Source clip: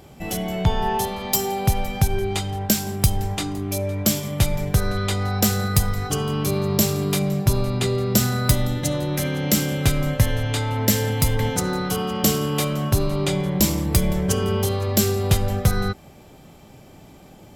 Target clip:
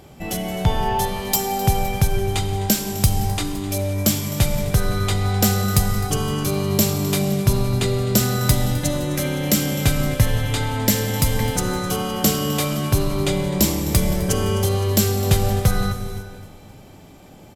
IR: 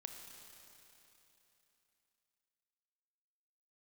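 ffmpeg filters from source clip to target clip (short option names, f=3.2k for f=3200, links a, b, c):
-filter_complex "[0:a]aecho=1:1:258|516|774|1032:0.141|0.0678|0.0325|0.0156,asplit=2[a][b];[1:a]atrim=start_sample=2205,afade=t=out:st=0.38:d=0.01,atrim=end_sample=17199,asetrate=27783,aresample=44100[c];[b][c]afir=irnorm=-1:irlink=0,volume=5dB[d];[a][d]amix=inputs=2:normalize=0,volume=-6dB"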